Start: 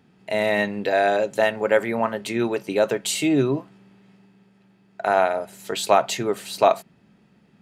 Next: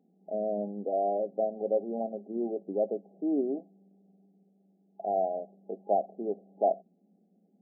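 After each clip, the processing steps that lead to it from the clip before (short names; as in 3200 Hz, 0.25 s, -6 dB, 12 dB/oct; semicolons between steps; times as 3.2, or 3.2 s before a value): FFT band-pass 170–820 Hz; gain -8.5 dB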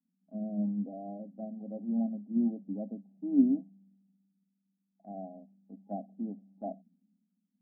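EQ curve 100 Hz 0 dB, 260 Hz +10 dB, 390 Hz -20 dB, 620 Hz -12 dB; three-band expander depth 70%; gain -2 dB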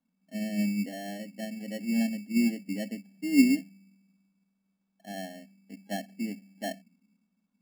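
sample-and-hold 18×; gain +3.5 dB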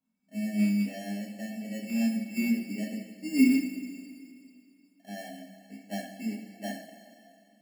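rattling part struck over -28 dBFS, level -34 dBFS; two-slope reverb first 0.42 s, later 2.6 s, from -14 dB, DRR -4 dB; gain -6.5 dB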